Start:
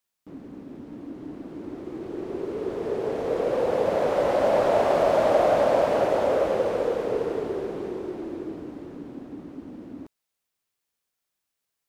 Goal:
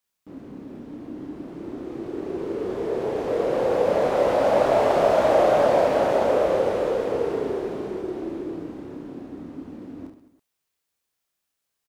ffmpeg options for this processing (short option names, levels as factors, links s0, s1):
-af "aecho=1:1:30|72|130.8|213.1|328.4:0.631|0.398|0.251|0.158|0.1"